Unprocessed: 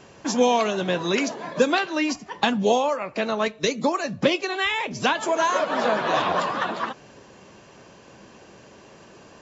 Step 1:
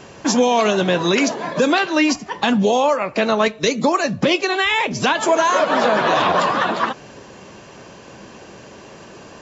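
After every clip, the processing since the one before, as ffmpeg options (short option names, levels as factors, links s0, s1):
-af "alimiter=level_in=5.01:limit=0.891:release=50:level=0:latency=1,volume=0.501"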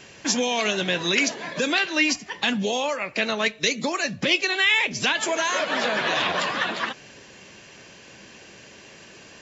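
-af "highshelf=f=1500:t=q:w=1.5:g=7.5,volume=0.355"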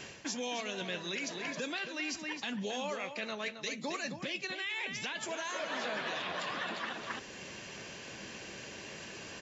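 -filter_complex "[0:a]asplit=2[s0][s1];[s1]adelay=268.2,volume=0.355,highshelf=f=4000:g=-6.04[s2];[s0][s2]amix=inputs=2:normalize=0,areverse,acompressor=threshold=0.0282:ratio=6,areverse,alimiter=level_in=1.41:limit=0.0631:level=0:latency=1:release=362,volume=0.708"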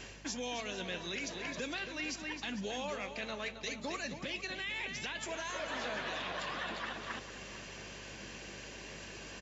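-af "aeval=exprs='val(0)+0.00224*(sin(2*PI*50*n/s)+sin(2*PI*2*50*n/s)/2+sin(2*PI*3*50*n/s)/3+sin(2*PI*4*50*n/s)/4+sin(2*PI*5*50*n/s)/5)':c=same,aecho=1:1:452|904|1356|1808:0.2|0.0878|0.0386|0.017,volume=0.794"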